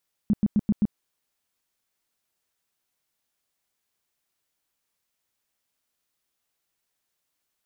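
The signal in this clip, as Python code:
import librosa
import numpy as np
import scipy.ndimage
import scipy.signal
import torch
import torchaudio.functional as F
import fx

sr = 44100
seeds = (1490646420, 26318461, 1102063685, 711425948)

y = fx.tone_burst(sr, hz=209.0, cycles=7, every_s=0.13, bursts=5, level_db=-16.5)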